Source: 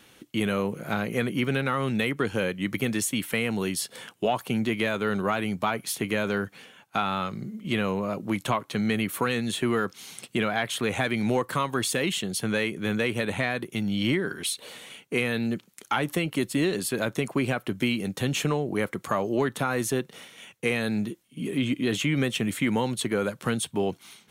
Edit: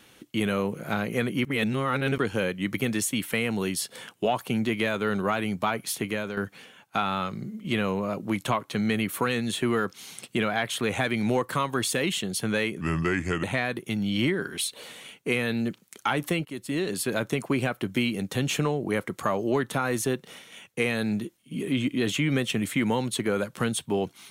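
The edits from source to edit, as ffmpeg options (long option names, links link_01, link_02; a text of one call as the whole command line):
ffmpeg -i in.wav -filter_complex "[0:a]asplit=7[link_01][link_02][link_03][link_04][link_05][link_06][link_07];[link_01]atrim=end=1.452[link_08];[link_02]atrim=start=1.448:end=2.182,asetpts=PTS-STARTPTS,areverse[link_09];[link_03]atrim=start=2.178:end=6.37,asetpts=PTS-STARTPTS,afade=type=out:start_time=3.782:duration=0.41:silence=0.375837[link_10];[link_04]atrim=start=6.37:end=12.814,asetpts=PTS-STARTPTS,afade=type=in:duration=0.004:curve=hsin:silence=0.375837[link_11];[link_05]atrim=start=12.81:end=13.29,asetpts=PTS-STARTPTS,asetrate=33957,aresample=44100[link_12];[link_06]atrim=start=13.286:end=16.31,asetpts=PTS-STARTPTS,afade=type=out:start_time=3.02:duration=0.004:curve=hsin:silence=0.188365[link_13];[link_07]atrim=start=16.31,asetpts=PTS-STARTPTS,afade=type=in:duration=0.55:silence=0.188365[link_14];[link_08][link_09]acrossfade=duration=0.004:curve1=hsin:curve2=hsin[link_15];[link_10][link_11]concat=n=2:v=0:a=1[link_16];[link_15][link_16]acrossfade=duration=0.004:curve1=hsin:curve2=hsin[link_17];[link_17][link_12]acrossfade=duration=0.004:curve1=hsin:curve2=hsin[link_18];[link_13][link_14]concat=n=2:v=0:a=1[link_19];[link_18][link_19]acrossfade=duration=0.004:curve1=hsin:curve2=hsin" out.wav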